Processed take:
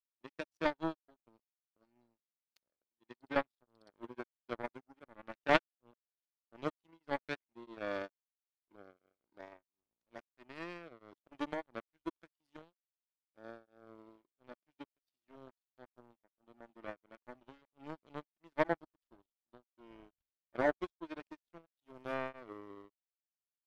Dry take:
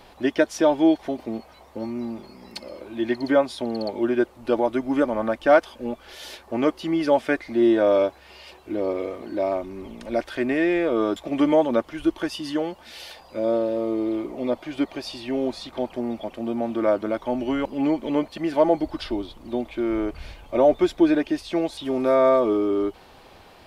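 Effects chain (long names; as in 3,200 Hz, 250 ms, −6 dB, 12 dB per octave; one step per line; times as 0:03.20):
power curve on the samples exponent 3
tremolo along a rectified sine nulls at 1.5 Hz
level +2.5 dB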